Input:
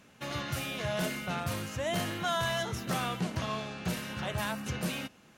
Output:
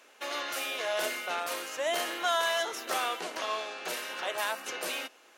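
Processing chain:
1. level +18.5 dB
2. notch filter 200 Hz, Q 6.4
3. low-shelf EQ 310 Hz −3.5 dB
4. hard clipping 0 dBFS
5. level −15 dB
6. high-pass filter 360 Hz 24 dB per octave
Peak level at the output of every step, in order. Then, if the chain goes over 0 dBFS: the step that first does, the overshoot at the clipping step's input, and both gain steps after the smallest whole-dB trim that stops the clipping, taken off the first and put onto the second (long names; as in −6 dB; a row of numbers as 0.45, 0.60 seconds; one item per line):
−2.0, −2.0, −2.0, −2.0, −17.0, −16.0 dBFS
no step passes full scale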